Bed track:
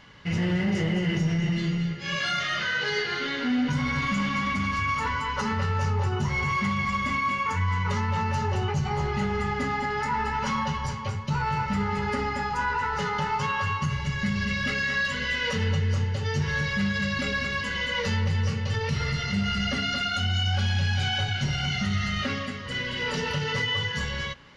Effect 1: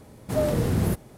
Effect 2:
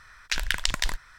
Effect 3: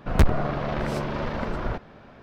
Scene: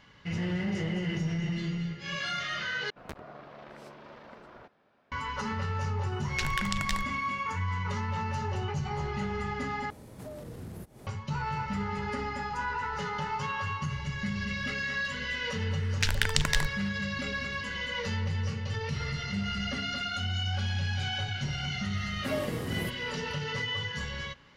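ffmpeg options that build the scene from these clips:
-filter_complex "[2:a]asplit=2[a][b];[1:a]asplit=2[c][d];[0:a]volume=-6dB[e];[3:a]highpass=f=370:p=1[f];[a]alimiter=limit=-6dB:level=0:latency=1:release=111[g];[c]acompressor=threshold=-37dB:ratio=6:attack=0.1:release=228:knee=1:detection=peak[h];[d]highpass=f=110:p=1[i];[e]asplit=3[j][k][l];[j]atrim=end=2.904[m];[f]atrim=end=2.22,asetpts=PTS-STARTPTS,volume=-17dB[n];[k]atrim=start=5.116:end=9.904[o];[h]atrim=end=1.17,asetpts=PTS-STARTPTS,volume=-1dB[p];[l]atrim=start=11.066[q];[g]atrim=end=1.18,asetpts=PTS-STARTPTS,volume=-6.5dB,afade=t=in:d=0.004:c=hsin,afade=t=out:st=1.176:d=0.004:c=hsin,adelay=6070[r];[b]atrim=end=1.18,asetpts=PTS-STARTPTS,volume=-1dB,afade=t=in:d=0.004:c=hsin,afade=t=out:st=1.176:d=0.004:c=hsin,adelay=15710[s];[i]atrim=end=1.17,asetpts=PTS-STARTPTS,volume=-8.5dB,afade=t=in:d=0.004:c=hsin,afade=t=out:st=1.166:d=0.004:c=hsin,adelay=21950[t];[m][n]acrossfade=d=0.004:c1=hsin:c2=hsin[u];[u][o]acrossfade=d=0.004:c1=hsin:c2=hsin[v];[v][p]acrossfade=d=0.004:c1=hsin:c2=hsin[w];[w][q]acrossfade=d=0.004:c1=hsin:c2=hsin[x];[x][r][s][t]amix=inputs=4:normalize=0"

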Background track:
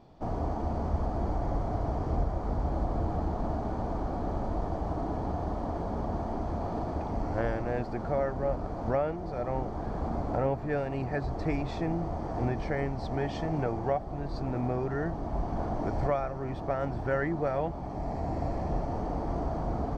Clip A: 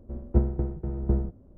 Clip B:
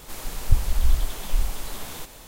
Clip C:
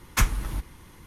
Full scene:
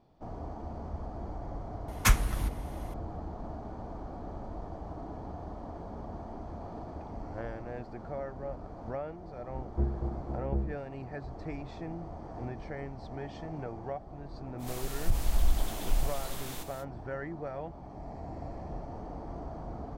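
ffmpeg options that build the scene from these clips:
-filter_complex "[0:a]volume=-9dB[a];[1:a]asplit=2[b][c];[c]adelay=29,volume=-2dB[d];[b][d]amix=inputs=2:normalize=0[e];[2:a]alimiter=level_in=9dB:limit=-1dB:release=50:level=0:latency=1[f];[3:a]atrim=end=1.06,asetpts=PTS-STARTPTS,volume=-1dB,afade=t=in:d=0.004:c=hsin,afade=t=out:st=1.056:d=0.004:c=hsin,adelay=1880[g];[e]atrim=end=1.57,asetpts=PTS-STARTPTS,volume=-11dB,afade=t=in:d=0.004:c=hsin,afade=t=out:st=1.566:d=0.004:c=hsin,adelay=9430[h];[f]atrim=end=2.27,asetpts=PTS-STARTPTS,volume=-14dB,afade=t=in:d=0.05,afade=t=out:st=2.22:d=0.05,adelay=14580[i];[a][g][h][i]amix=inputs=4:normalize=0"

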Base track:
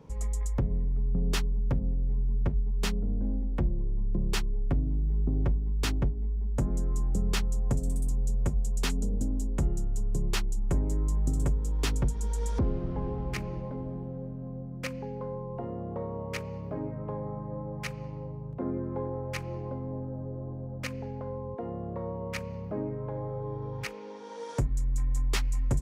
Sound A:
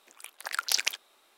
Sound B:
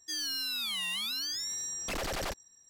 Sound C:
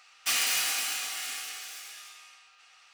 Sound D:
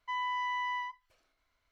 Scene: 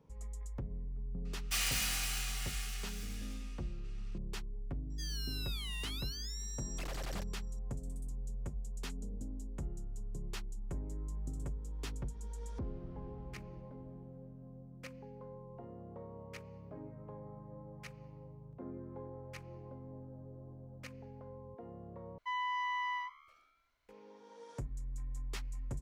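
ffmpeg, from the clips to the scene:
-filter_complex "[0:a]volume=-13.5dB[a];[4:a]asplit=6[b][c][d][e][f][g];[c]adelay=121,afreqshift=73,volume=-23dB[h];[d]adelay=242,afreqshift=146,volume=-27dB[i];[e]adelay=363,afreqshift=219,volume=-31dB[j];[f]adelay=484,afreqshift=292,volume=-35dB[k];[g]adelay=605,afreqshift=365,volume=-39.1dB[l];[b][h][i][j][k][l]amix=inputs=6:normalize=0[m];[a]asplit=2[n][o];[n]atrim=end=22.184[p];[m]atrim=end=1.71,asetpts=PTS-STARTPTS,volume=-2.5dB[q];[o]atrim=start=23.886[r];[3:a]atrim=end=2.93,asetpts=PTS-STARTPTS,volume=-7.5dB,afade=t=in:d=0.004:c=hsin,afade=t=out:st=2.926:d=0.004:c=hsin,adelay=1250[s];[2:a]atrim=end=2.69,asetpts=PTS-STARTPTS,volume=-10dB,afade=t=in:d=0.004:c=hsin,afade=t=out:st=2.686:d=0.004:c=hsin,adelay=4900[t];[p][q]acrossfade=d=0.004:c1=hsin:c2=hsin[u];[u][r]acrossfade=d=0.004:c1=hsin:c2=hsin[v];[v][s][t]amix=inputs=3:normalize=0"

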